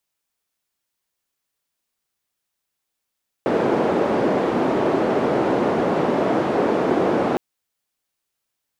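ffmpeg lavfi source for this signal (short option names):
-f lavfi -i "anoisesrc=c=white:d=3.91:r=44100:seed=1,highpass=f=280,lowpass=f=440,volume=5.4dB"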